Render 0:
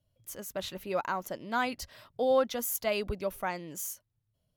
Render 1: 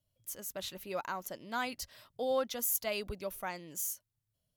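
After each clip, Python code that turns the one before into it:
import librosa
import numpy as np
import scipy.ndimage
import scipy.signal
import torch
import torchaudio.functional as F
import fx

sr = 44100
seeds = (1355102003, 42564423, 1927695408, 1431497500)

y = fx.high_shelf(x, sr, hz=3400.0, db=8.5)
y = y * librosa.db_to_amplitude(-6.5)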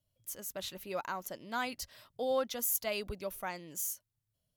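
y = x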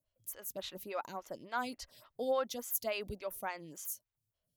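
y = fx.stagger_phaser(x, sr, hz=3.5)
y = y * librosa.db_to_amplitude(1.0)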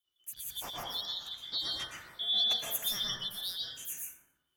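y = fx.band_shuffle(x, sr, order='3412')
y = fx.echo_feedback(y, sr, ms=88, feedback_pct=41, wet_db=-21.0)
y = fx.rev_plate(y, sr, seeds[0], rt60_s=1.1, hf_ratio=0.3, predelay_ms=105, drr_db=-4.5)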